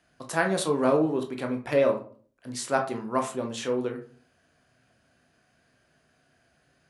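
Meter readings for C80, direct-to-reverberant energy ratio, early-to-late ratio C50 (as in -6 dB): 16.0 dB, 3.5 dB, 10.5 dB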